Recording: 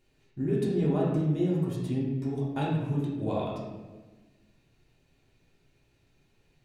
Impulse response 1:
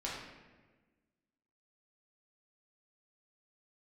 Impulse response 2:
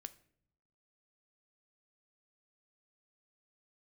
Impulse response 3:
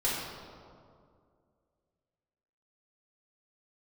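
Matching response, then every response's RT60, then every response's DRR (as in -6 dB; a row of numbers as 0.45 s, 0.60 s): 1; 1.3 s, no single decay rate, 2.2 s; -6.0 dB, 11.0 dB, -8.0 dB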